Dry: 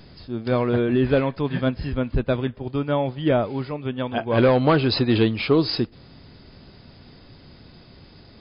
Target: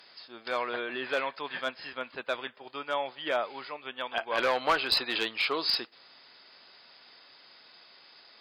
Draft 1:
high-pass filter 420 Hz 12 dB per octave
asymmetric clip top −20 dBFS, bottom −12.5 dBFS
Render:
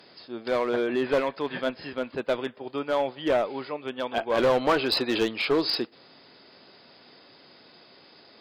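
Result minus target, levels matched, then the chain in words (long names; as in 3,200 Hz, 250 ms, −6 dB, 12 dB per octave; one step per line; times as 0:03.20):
500 Hz band +4.5 dB
high-pass filter 970 Hz 12 dB per octave
asymmetric clip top −20 dBFS, bottom −12.5 dBFS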